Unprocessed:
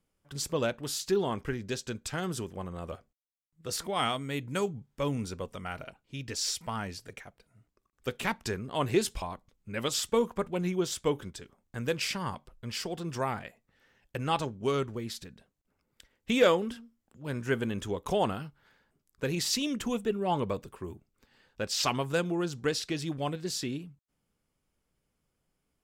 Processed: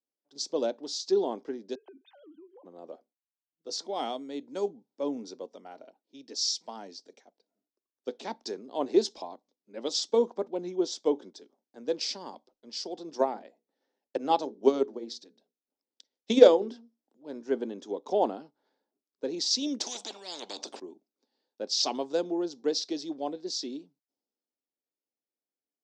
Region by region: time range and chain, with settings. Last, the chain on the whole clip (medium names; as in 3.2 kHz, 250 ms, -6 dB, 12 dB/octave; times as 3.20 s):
1.75–2.65 s: formants replaced by sine waves + compression 16:1, threshold -43 dBFS
13.08–16.74 s: hum notches 60/120/180/240/300/360/420/480 Hz + transient shaper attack +8 dB, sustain -1 dB
19.80–20.80 s: bass shelf 250 Hz +12 dB + spectrum-flattening compressor 10:1
whole clip: elliptic band-pass 270–5700 Hz, stop band 40 dB; high-order bell 1.8 kHz -14.5 dB; three bands expanded up and down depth 40%; trim +1.5 dB